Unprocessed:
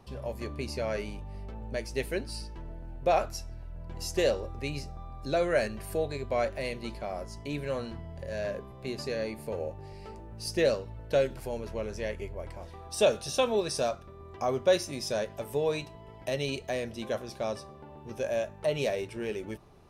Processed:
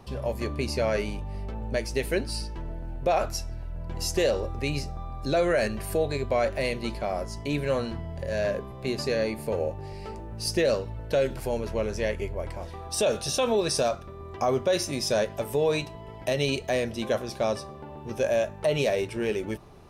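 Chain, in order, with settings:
brickwall limiter −22 dBFS, peak gain reduction 9.5 dB
level +6.5 dB

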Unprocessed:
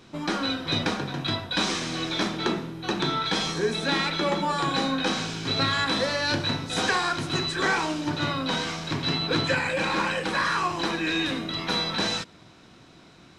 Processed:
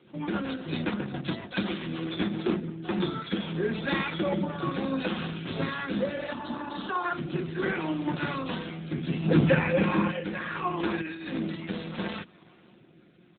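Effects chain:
0:06.18–0:06.84: healed spectral selection 260–2,800 Hz before
high-pass filter 140 Hz 6 dB per octave
0:09.25–0:10.11: low-shelf EQ 350 Hz +10.5 dB
comb filter 5.6 ms, depth 32%
dynamic equaliser 210 Hz, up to +5 dB, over −43 dBFS, Q 1.7
0:11.01–0:11.55: compressor whose output falls as the input rises −29 dBFS, ratio −0.5
rotating-speaker cabinet horn 7.5 Hz, later 0.7 Hz, at 0:02.30
0:06.33–0:07.05: phaser with its sweep stopped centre 540 Hz, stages 6
AMR narrowband 7.4 kbit/s 8,000 Hz

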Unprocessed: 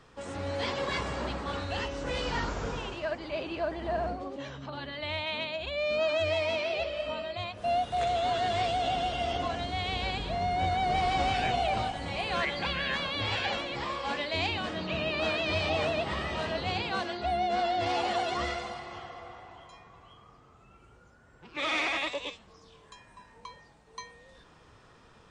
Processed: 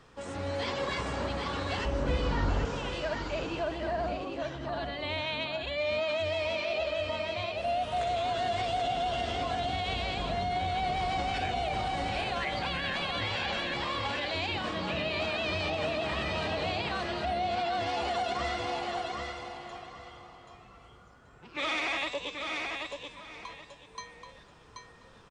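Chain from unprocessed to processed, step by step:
on a send: repeating echo 781 ms, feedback 24%, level −5.5 dB
on the sum: brickwall limiter −23 dBFS, peak gain reduction 6.5 dB
0:01.85–0:02.65: spectral tilt −2 dB per octave

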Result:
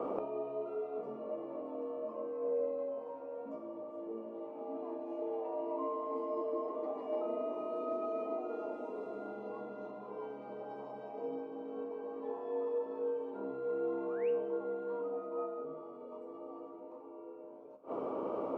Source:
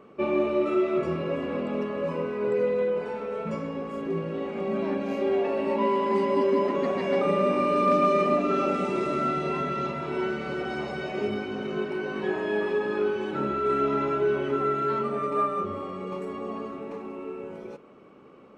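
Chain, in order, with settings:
drawn EQ curve 130 Hz 0 dB, 960 Hz +8 dB, 1,500 Hz −12 dB
sound drawn into the spectrogram rise, 0:14.08–0:14.30, 980–2,900 Hz −38 dBFS
frequency shifter +60 Hz
gate with flip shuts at −31 dBFS, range −28 dB
tuned comb filter 68 Hz, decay 0.45 s, harmonics all, mix 70%
level +17 dB

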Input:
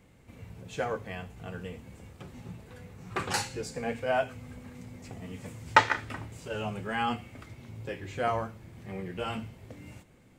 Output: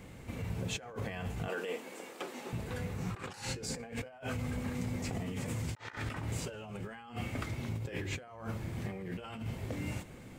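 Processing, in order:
0:01.48–0:02.53: high-pass filter 310 Hz 24 dB per octave
compressor whose output falls as the input rises −44 dBFS, ratio −1
level +2.5 dB

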